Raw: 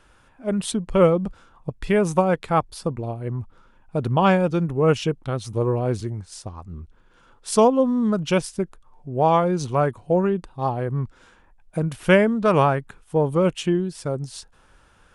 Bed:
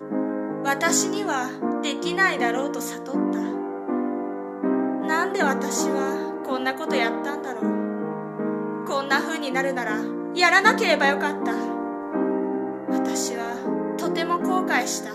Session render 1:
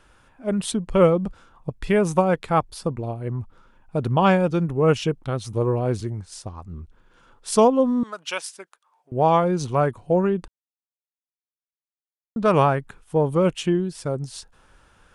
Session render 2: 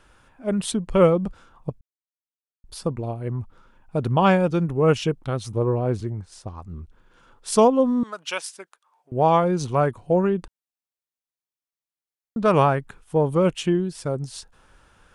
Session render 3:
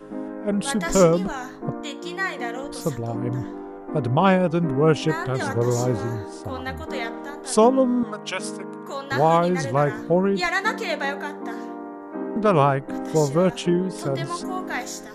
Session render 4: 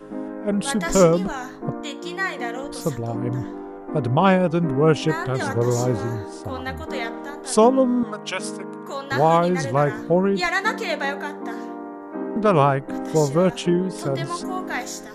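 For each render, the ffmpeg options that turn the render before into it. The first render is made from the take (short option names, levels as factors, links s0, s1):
-filter_complex "[0:a]asettb=1/sr,asplit=3[s0][s1][s2];[s0]atrim=end=8.034[s3];[s1]atrim=start=8.03:end=9.12,asetpts=PTS-STARTPTS,afade=t=in:d=0.004:c=qsin,afade=t=out:st=1.086:d=0.004:c=qsin,highpass=990[s4];[s2]atrim=start=9.116[s5];[s3][s4]acrossfade=d=0.004:c1=hsin:c2=qsin[s6];[s6][s5]acrossfade=d=0.004:c1=qsin:c2=hsin,asplit=3[s7][s8][s9];[s7]atrim=end=10.48,asetpts=PTS-STARTPTS,afade=t=out:st=10.476:d=0.004:c=hsin[s10];[s8]atrim=start=10.48:end=12.36,asetpts=PTS-STARTPTS,volume=0[s11];[s9]atrim=start=12.36,asetpts=PTS-STARTPTS,afade=t=in:d=0.004:c=hsin[s12];[s10][s11][s12]concat=n=3:v=0:a=1"
-filter_complex "[0:a]asettb=1/sr,asplit=3[s0][s1][s2];[s0]atrim=end=5.524[s3];[s1]atrim=start=5.52:end=6.48,asetpts=PTS-STARTPTS,afade=t=in:d=0.004:c=qsin,afade=t=out:st=0.956:d=0.004:c=qsin,highshelf=f=2700:g=-8[s4];[s2]atrim=start=6.476[s5];[s3][s4]acrossfade=d=0.004:c1=hsin:c2=qsin[s6];[s6][s5]acrossfade=d=0.004:c1=qsin:c2=hsin,asplit=3[s7][s8][s9];[s7]atrim=end=1.81,asetpts=PTS-STARTPTS,afade=t=out:st=1.806:d=0.004:c=hsin[s10];[s8]atrim=start=1.81:end=2.64,asetpts=PTS-STARTPTS,volume=0[s11];[s9]atrim=start=2.64,asetpts=PTS-STARTPTS,afade=t=in:d=0.004:c=hsin[s12];[s10][s11][s12]concat=n=3:v=0:a=1"
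-filter_complex "[1:a]volume=0.473[s0];[0:a][s0]amix=inputs=2:normalize=0"
-af "volume=1.12"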